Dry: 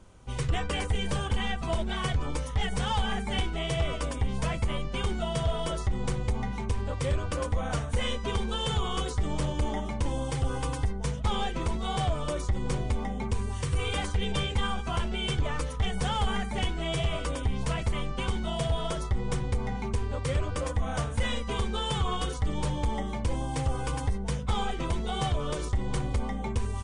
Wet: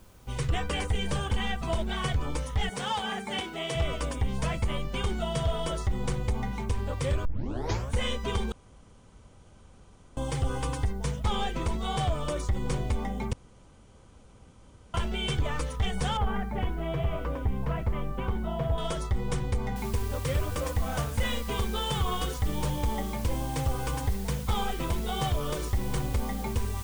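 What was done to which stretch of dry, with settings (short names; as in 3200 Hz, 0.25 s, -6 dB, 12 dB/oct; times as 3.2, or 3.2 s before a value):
2.69–3.75 HPF 220 Hz
7.25 tape start 0.67 s
8.52–10.17 room tone
13.33–14.94 room tone
16.17–18.78 LPF 1600 Hz
19.76 noise floor step -65 dB -47 dB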